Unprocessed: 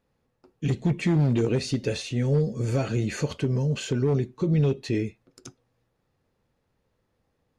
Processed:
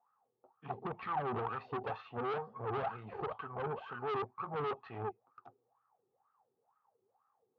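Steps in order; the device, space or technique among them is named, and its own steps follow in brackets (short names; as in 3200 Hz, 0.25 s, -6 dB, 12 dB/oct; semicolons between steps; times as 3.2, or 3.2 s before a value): wah-wah guitar rig (wah 2.1 Hz 370–1300 Hz, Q 11; tube stage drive 48 dB, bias 0.75; speaker cabinet 99–3400 Hz, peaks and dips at 110 Hz +9 dB, 320 Hz -8 dB, 570 Hz -7 dB, 800 Hz +10 dB, 1200 Hz +7 dB, 2100 Hz -4 dB); gain +14 dB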